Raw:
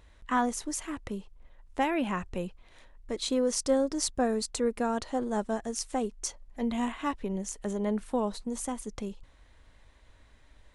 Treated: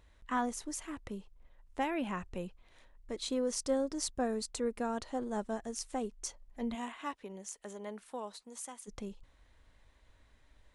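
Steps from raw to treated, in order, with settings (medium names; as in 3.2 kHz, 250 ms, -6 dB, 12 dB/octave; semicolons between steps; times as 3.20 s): 6.74–8.87 s: high-pass 410 Hz -> 1.3 kHz 6 dB/octave; trim -6 dB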